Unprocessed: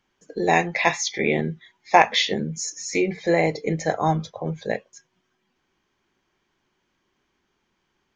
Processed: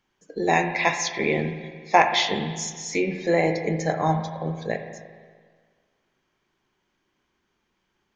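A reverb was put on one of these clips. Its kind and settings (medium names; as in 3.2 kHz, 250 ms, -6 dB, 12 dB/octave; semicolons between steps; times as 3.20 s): spring tank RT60 1.7 s, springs 37/59 ms, chirp 50 ms, DRR 7 dB; trim -2 dB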